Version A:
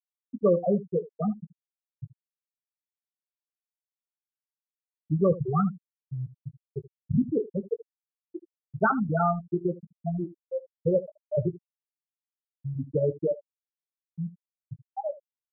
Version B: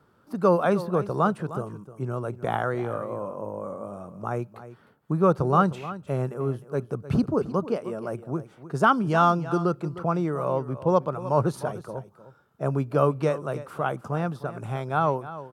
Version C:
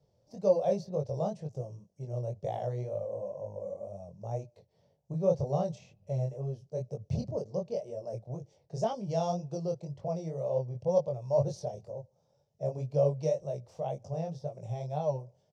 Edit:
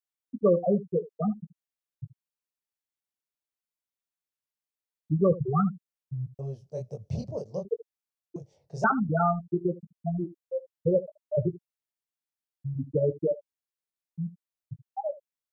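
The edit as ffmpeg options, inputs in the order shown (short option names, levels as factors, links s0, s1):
-filter_complex "[2:a]asplit=2[s0][s1];[0:a]asplit=3[s2][s3][s4];[s2]atrim=end=6.392[s5];[s0]atrim=start=6.388:end=7.652[s6];[s3]atrim=start=7.648:end=8.362[s7];[s1]atrim=start=8.358:end=8.842[s8];[s4]atrim=start=8.838[s9];[s5][s6]acrossfade=d=0.004:c1=hsin:c2=hsin[s10];[s10][s7]acrossfade=d=0.004:c1=hsin:c2=hsin[s11];[s11][s8]acrossfade=d=0.004:c1=hsin:c2=hsin[s12];[s12][s9]acrossfade=d=0.004:c1=hsin:c2=hsin"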